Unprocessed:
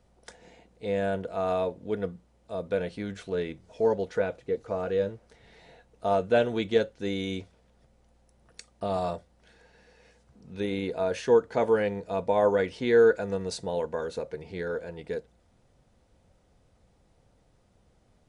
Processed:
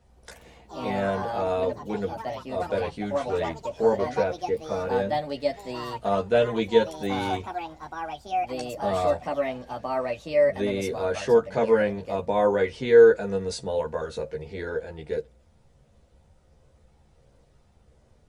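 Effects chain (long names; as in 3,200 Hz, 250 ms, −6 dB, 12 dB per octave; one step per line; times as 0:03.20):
multi-voice chorus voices 6, 0.24 Hz, delay 14 ms, depth 1.3 ms
delay with pitch and tempo change per echo 91 ms, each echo +4 semitones, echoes 3, each echo −6 dB
level +5 dB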